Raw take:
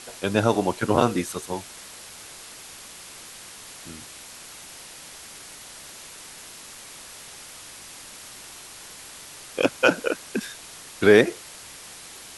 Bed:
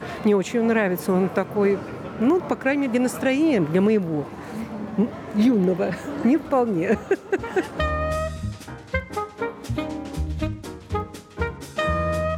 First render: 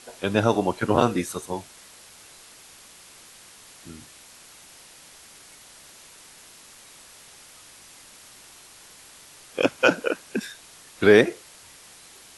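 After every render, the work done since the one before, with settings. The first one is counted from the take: noise print and reduce 6 dB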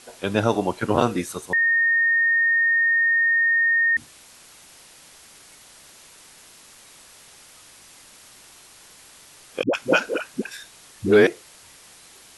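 1.53–3.97 s: bleep 1.84 kHz -16 dBFS; 9.63–11.27 s: phase dispersion highs, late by 106 ms, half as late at 460 Hz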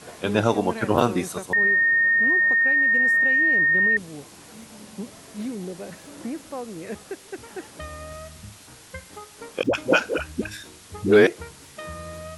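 add bed -13.5 dB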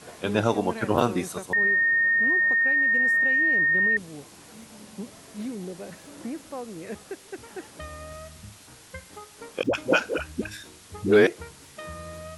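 trim -2.5 dB

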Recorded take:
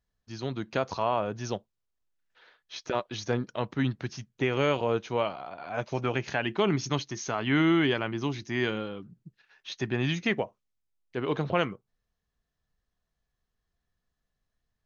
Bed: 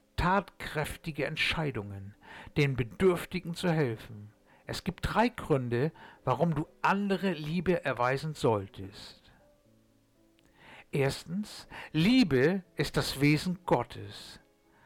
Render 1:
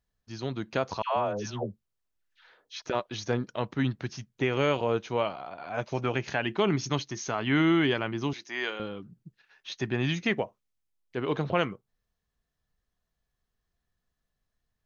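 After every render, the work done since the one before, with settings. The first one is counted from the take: 1.02–2.82 s: phase dispersion lows, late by 145 ms, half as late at 720 Hz; 8.33–8.80 s: high-pass 550 Hz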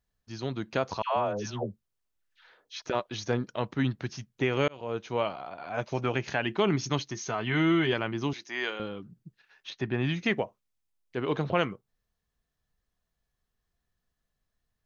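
4.68–5.39 s: fade in equal-power; 7.14–7.93 s: comb of notches 280 Hz; 9.70–10.19 s: distance through air 170 m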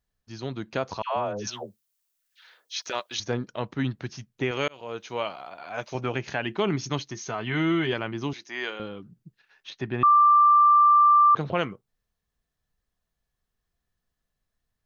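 1.47–3.20 s: tilt EQ +4 dB/octave; 4.51–5.95 s: tilt EQ +2 dB/octave; 10.03–11.35 s: bleep 1.18 kHz -13.5 dBFS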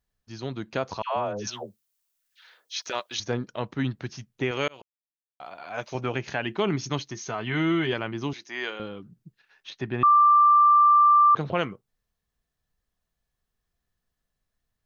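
4.82–5.40 s: mute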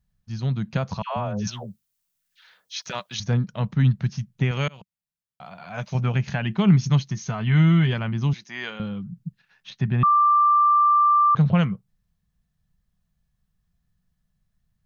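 resonant low shelf 240 Hz +9.5 dB, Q 3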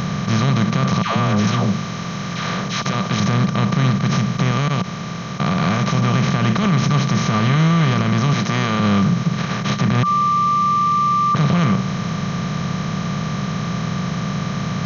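spectral levelling over time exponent 0.2; peak limiter -8.5 dBFS, peak gain reduction 9.5 dB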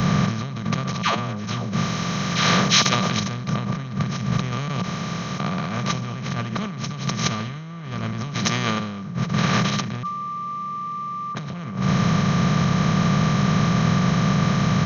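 compressor with a negative ratio -22 dBFS, ratio -1; three bands expanded up and down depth 100%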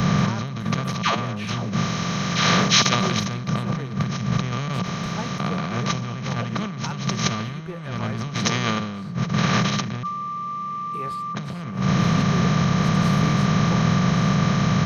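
add bed -8.5 dB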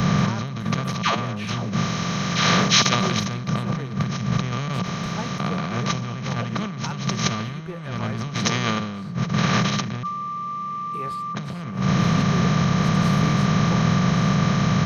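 no audible change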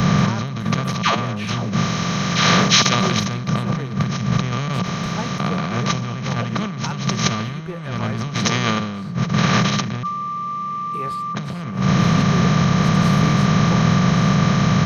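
trim +3.5 dB; peak limiter -2 dBFS, peak gain reduction 2.5 dB

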